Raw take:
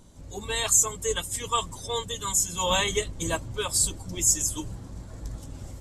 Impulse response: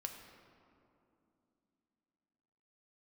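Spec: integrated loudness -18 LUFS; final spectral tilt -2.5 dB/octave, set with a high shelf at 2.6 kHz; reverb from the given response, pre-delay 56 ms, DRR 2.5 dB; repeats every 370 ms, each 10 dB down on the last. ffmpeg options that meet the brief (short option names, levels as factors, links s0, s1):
-filter_complex "[0:a]highshelf=f=2600:g=-5.5,aecho=1:1:370|740|1110|1480:0.316|0.101|0.0324|0.0104,asplit=2[s0][s1];[1:a]atrim=start_sample=2205,adelay=56[s2];[s1][s2]afir=irnorm=-1:irlink=0,volume=0.944[s3];[s0][s3]amix=inputs=2:normalize=0,volume=2.82"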